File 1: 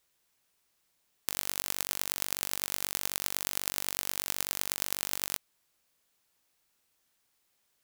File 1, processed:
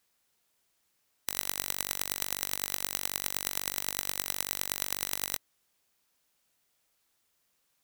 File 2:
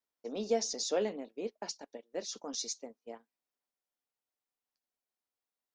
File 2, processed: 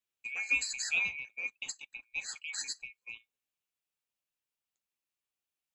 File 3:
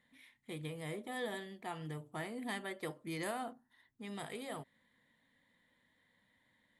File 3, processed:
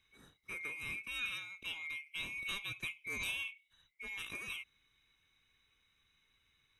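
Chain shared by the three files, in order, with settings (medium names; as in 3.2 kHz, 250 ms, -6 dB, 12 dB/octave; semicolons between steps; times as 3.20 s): split-band scrambler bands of 2 kHz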